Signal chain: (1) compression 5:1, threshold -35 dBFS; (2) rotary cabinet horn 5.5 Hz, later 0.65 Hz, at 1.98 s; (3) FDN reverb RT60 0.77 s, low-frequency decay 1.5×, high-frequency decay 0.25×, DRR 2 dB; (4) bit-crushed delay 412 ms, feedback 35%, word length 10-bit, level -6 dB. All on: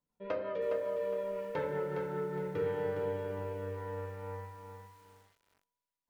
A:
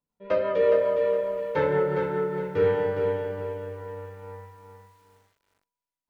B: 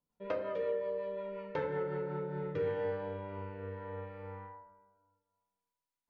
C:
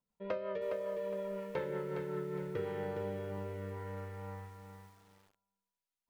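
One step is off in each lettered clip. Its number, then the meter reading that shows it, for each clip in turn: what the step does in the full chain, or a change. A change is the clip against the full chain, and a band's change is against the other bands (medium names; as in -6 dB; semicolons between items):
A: 1, crest factor change +1.5 dB; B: 4, crest factor change +1.5 dB; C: 3, 250 Hz band +3.5 dB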